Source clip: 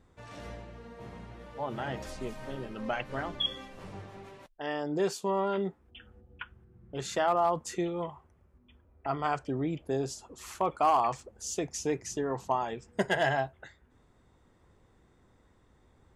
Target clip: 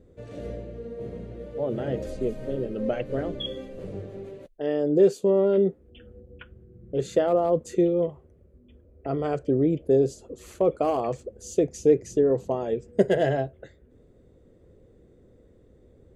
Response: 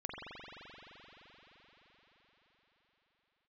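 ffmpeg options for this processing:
-af "lowshelf=f=680:t=q:w=3:g=10,bandreject=f=5400:w=9.7,volume=0.708"

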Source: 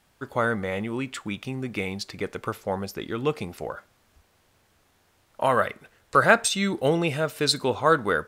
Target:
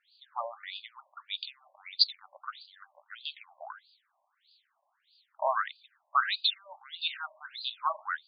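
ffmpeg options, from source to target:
-af "aexciter=amount=11.2:drive=7.4:freq=3900,afftfilt=real='re*between(b*sr/1024,770*pow(3500/770,0.5+0.5*sin(2*PI*1.6*pts/sr))/1.41,770*pow(3500/770,0.5+0.5*sin(2*PI*1.6*pts/sr))*1.41)':imag='im*between(b*sr/1024,770*pow(3500/770,0.5+0.5*sin(2*PI*1.6*pts/sr))/1.41,770*pow(3500/770,0.5+0.5*sin(2*PI*1.6*pts/sr))*1.41)':win_size=1024:overlap=0.75,volume=0.562"

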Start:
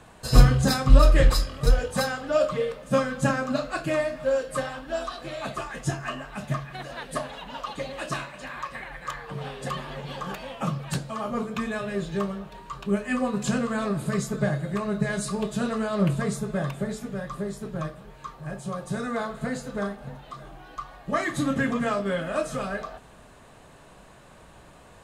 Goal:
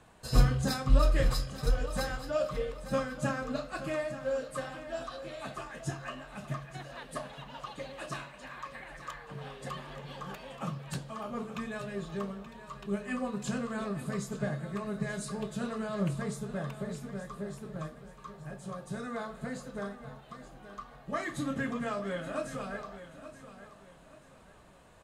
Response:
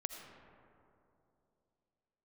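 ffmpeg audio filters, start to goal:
-af "aecho=1:1:878|1756|2634:0.224|0.0739|0.0244,volume=0.376"

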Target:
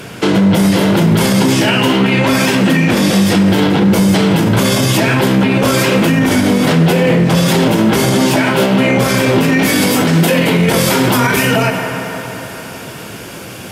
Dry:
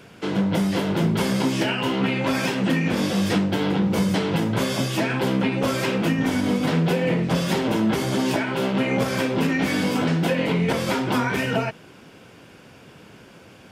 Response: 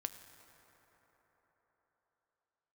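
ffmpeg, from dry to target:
-filter_complex "[0:a]asetnsamples=n=441:p=0,asendcmd='9.63 equalizer g 14',equalizer=f=13000:w=0.44:g=6.5[s0];[1:a]atrim=start_sample=2205,asetrate=52920,aresample=44100[s1];[s0][s1]afir=irnorm=-1:irlink=0,alimiter=level_in=13.3:limit=0.891:release=50:level=0:latency=1,volume=0.75"

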